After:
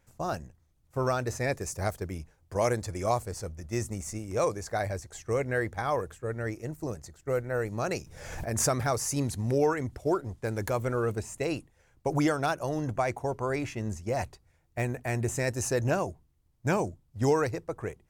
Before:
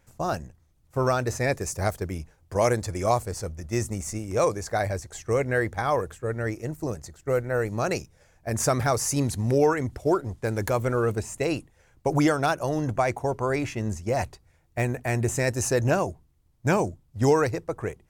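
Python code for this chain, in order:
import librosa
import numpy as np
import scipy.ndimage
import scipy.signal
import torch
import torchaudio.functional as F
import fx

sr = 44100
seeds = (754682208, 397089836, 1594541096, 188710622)

y = fx.pre_swell(x, sr, db_per_s=47.0, at=(7.98, 8.75))
y = F.gain(torch.from_numpy(y), -4.5).numpy()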